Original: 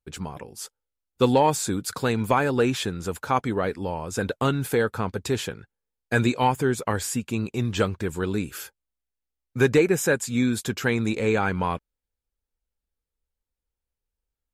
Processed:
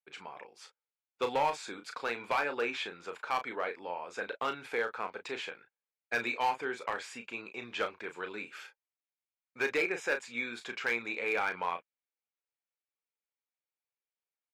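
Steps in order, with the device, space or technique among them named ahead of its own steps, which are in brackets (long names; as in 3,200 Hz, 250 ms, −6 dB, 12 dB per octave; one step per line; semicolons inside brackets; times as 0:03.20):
megaphone (band-pass filter 610–3,400 Hz; parametric band 2,300 Hz +7 dB 0.32 octaves; hard clipping −17.5 dBFS, distortion −15 dB; double-tracking delay 34 ms −8 dB)
level −6 dB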